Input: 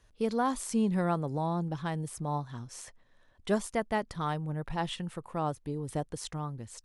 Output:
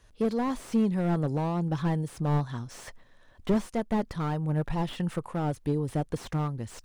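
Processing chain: in parallel at +2 dB: vocal rider within 5 dB 0.5 s; on the sum: tremolo triangle 1.8 Hz, depth 45%; slew limiter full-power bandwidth 30 Hz

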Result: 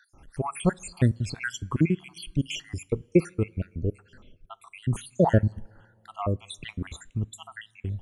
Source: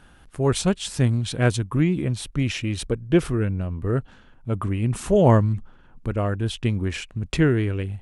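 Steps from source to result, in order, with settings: random spectral dropouts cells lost 71%; two-slope reverb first 0.24 s, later 2.2 s, from -21 dB, DRR 19 dB

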